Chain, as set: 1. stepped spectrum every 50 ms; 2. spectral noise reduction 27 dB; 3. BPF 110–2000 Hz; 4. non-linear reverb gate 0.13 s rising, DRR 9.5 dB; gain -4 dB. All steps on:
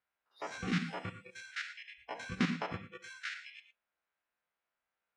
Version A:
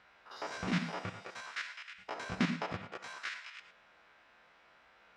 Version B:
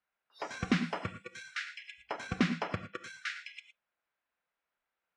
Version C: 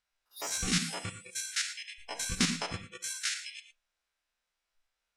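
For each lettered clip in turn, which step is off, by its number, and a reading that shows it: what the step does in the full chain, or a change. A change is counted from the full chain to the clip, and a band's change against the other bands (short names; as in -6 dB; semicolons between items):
2, 1 kHz band +1.5 dB; 1, 500 Hz band +1.5 dB; 3, 8 kHz band +21.5 dB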